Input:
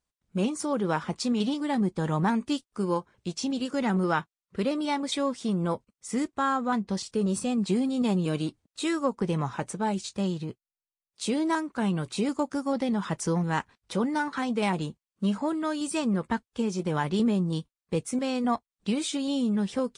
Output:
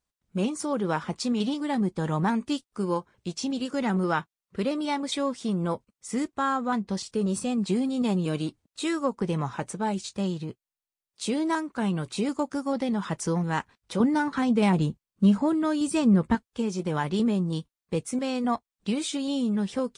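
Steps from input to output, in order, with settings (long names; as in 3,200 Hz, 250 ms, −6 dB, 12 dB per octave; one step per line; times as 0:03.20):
0:14.00–0:16.35: low-shelf EQ 300 Hz +10.5 dB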